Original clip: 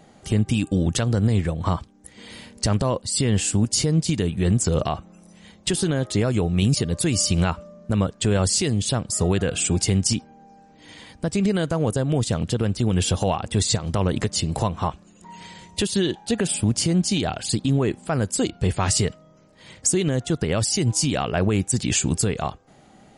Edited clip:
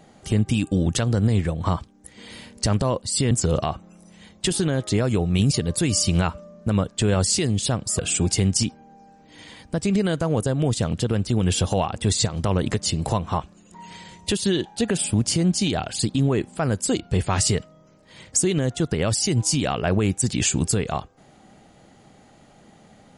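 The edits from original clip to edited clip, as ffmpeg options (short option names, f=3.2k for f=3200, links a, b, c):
-filter_complex "[0:a]asplit=3[a][b][c];[a]atrim=end=3.312[d];[b]atrim=start=4.538:end=9.222[e];[c]atrim=start=9.488[f];[d][e]acrossfade=d=0.004:c1=hsin:c2=hsin[g];[g][f]acrossfade=d=0.004:c1=hsin:c2=hsin"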